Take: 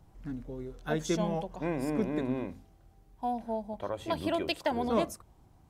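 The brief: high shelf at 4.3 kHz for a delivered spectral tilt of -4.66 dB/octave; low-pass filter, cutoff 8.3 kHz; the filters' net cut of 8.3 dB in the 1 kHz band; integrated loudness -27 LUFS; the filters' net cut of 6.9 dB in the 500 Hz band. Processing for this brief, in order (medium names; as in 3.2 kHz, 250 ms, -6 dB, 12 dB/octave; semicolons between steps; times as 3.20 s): low-pass 8.3 kHz; peaking EQ 500 Hz -6.5 dB; peaking EQ 1 kHz -9 dB; treble shelf 4.3 kHz +7.5 dB; trim +9.5 dB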